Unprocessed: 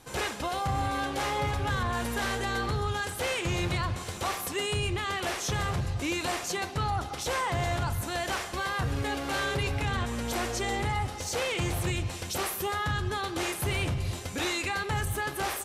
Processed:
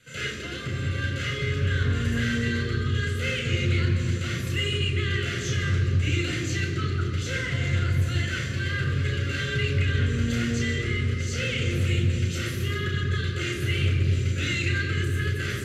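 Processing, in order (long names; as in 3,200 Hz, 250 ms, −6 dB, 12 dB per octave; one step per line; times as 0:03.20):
Butterworth band-reject 830 Hz, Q 0.82
convolution reverb RT60 3.5 s, pre-delay 3 ms, DRR 2.5 dB
highs frequency-modulated by the lows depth 0.11 ms
level −6.5 dB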